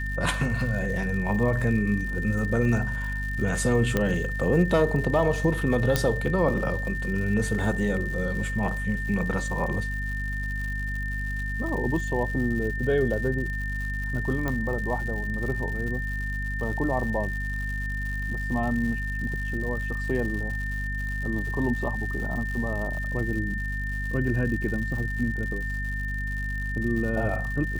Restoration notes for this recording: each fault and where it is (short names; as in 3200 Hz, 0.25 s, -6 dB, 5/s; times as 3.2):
crackle 160/s -34 dBFS
hum 50 Hz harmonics 5 -31 dBFS
tone 1800 Hz -32 dBFS
3.97 pop -10 dBFS
5.96 pop -7 dBFS
14.48 pop -15 dBFS